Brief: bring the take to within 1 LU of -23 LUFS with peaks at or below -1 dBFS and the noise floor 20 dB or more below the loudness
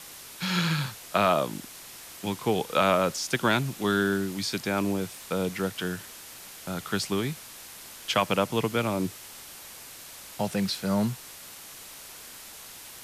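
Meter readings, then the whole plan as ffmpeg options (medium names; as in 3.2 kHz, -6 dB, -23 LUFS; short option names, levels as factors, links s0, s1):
noise floor -45 dBFS; noise floor target -48 dBFS; loudness -28.0 LUFS; peak level -11.5 dBFS; loudness target -23.0 LUFS
-> -af "afftdn=nr=6:nf=-45"
-af "volume=1.78"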